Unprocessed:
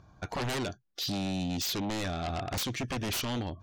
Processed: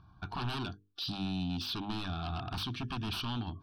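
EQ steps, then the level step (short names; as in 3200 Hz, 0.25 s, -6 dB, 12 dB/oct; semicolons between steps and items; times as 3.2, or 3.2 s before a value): air absorption 53 m; notches 50/100/150/200/250/300/350/400/450 Hz; fixed phaser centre 2000 Hz, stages 6; 0.0 dB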